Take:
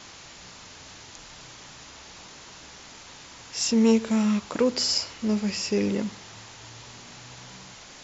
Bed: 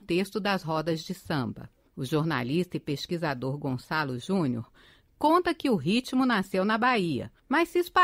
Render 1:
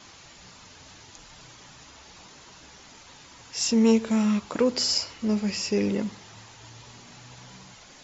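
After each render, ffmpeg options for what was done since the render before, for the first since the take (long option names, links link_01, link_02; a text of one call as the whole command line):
ffmpeg -i in.wav -af "afftdn=noise_reduction=6:noise_floor=-46" out.wav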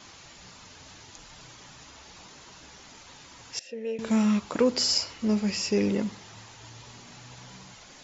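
ffmpeg -i in.wav -filter_complex "[0:a]asettb=1/sr,asplit=3[link_01][link_02][link_03];[link_01]atrim=end=3.594[link_04];[link_02]atrim=start=3.59:end=3.99,asetpts=PTS-STARTPTS,afade=type=in:duration=0.004:curve=qsin,afade=type=out:start_time=0.396:duration=0.004:curve=qsin,asplit=3[link_05][link_06][link_07];[link_05]bandpass=frequency=530:width_type=q:width=8,volume=0dB[link_08];[link_06]bandpass=frequency=1840:width_type=q:width=8,volume=-6dB[link_09];[link_07]bandpass=frequency=2480:width_type=q:width=8,volume=-9dB[link_10];[link_08][link_09][link_10]amix=inputs=3:normalize=0[link_11];[link_03]atrim=start=3.986[link_12];[link_04][link_11]acrossfade=duration=0.004:curve1=hsin:curve2=qsin[link_13];[link_13][link_12]acrossfade=duration=0.004:curve1=qsin:curve2=hsin" out.wav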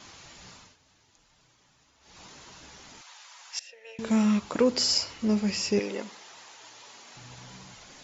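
ffmpeg -i in.wav -filter_complex "[0:a]asettb=1/sr,asplit=3[link_01][link_02][link_03];[link_01]atrim=end=3.014[link_04];[link_02]atrim=start=3.01:end=3.99,asetpts=PTS-STARTPTS,afade=type=in:duration=0.004:curve=qsin,afade=type=out:start_time=0.976:duration=0.004:curve=qsin,highpass=frequency=750:width=0.5412,highpass=frequency=750:width=1.3066[link_05];[link_03]atrim=start=3.986[link_06];[link_04][link_05]acrossfade=duration=0.004:curve1=hsin:curve2=qsin[link_07];[link_07][link_06]acrossfade=duration=0.004:curve1=qsin:curve2=hsin,asettb=1/sr,asplit=3[link_08][link_09][link_10];[link_08]atrim=end=5.794[link_11];[link_09]atrim=start=5.79:end=7.16,asetpts=PTS-STARTPTS,afade=type=in:duration=0.004:curve=qsin,afade=type=out:start_time=1.366:duration=0.004:curve=qsin,highpass=450[link_12];[link_10]atrim=start=7.156[link_13];[link_11][link_12]acrossfade=duration=0.004:curve1=hsin:curve2=qsin[link_14];[link_14][link_13]acrossfade=duration=0.004:curve1=qsin:curve2=hsin,asplit=3[link_15][link_16][link_17];[link_15]atrim=end=0.77,asetpts=PTS-STARTPTS,afade=type=out:start_time=0.53:duration=0.24:silence=0.16788[link_18];[link_16]atrim=start=0.77:end=2,asetpts=PTS-STARTPTS,volume=-15.5dB[link_19];[link_17]atrim=start=2,asetpts=PTS-STARTPTS,afade=type=in:duration=0.24:silence=0.16788[link_20];[link_18][link_19][link_20]concat=n=3:v=0:a=1" out.wav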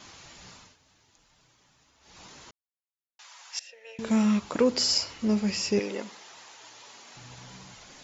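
ffmpeg -i in.wav -filter_complex "[0:a]asplit=3[link_01][link_02][link_03];[link_01]atrim=end=2.51,asetpts=PTS-STARTPTS,afade=type=out:start_time=2.506:duration=0.004:curve=hsin[link_04];[link_02]atrim=start=2.51:end=3.19,asetpts=PTS-STARTPTS,volume=0[link_05];[link_03]atrim=start=3.19,asetpts=PTS-STARTPTS,afade=type=in:duration=0.004:curve=hsin[link_06];[link_04][link_05][link_06]concat=n=3:v=0:a=1" out.wav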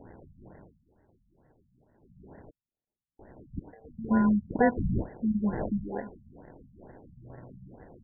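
ffmpeg -i in.wav -af "acrusher=samples=36:mix=1:aa=0.000001,afftfilt=real='re*lt(b*sr/1024,210*pow(2100/210,0.5+0.5*sin(2*PI*2.2*pts/sr)))':imag='im*lt(b*sr/1024,210*pow(2100/210,0.5+0.5*sin(2*PI*2.2*pts/sr)))':win_size=1024:overlap=0.75" out.wav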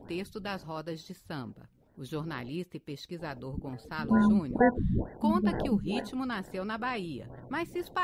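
ffmpeg -i in.wav -i bed.wav -filter_complex "[1:a]volume=-9.5dB[link_01];[0:a][link_01]amix=inputs=2:normalize=0" out.wav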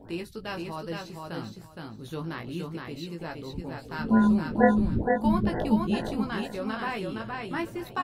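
ffmpeg -i in.wav -filter_complex "[0:a]asplit=2[link_01][link_02];[link_02]adelay=18,volume=-5dB[link_03];[link_01][link_03]amix=inputs=2:normalize=0,aecho=1:1:467|934|1401:0.668|0.127|0.0241" out.wav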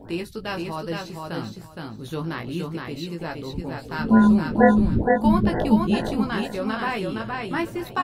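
ffmpeg -i in.wav -af "volume=5.5dB,alimiter=limit=-3dB:level=0:latency=1" out.wav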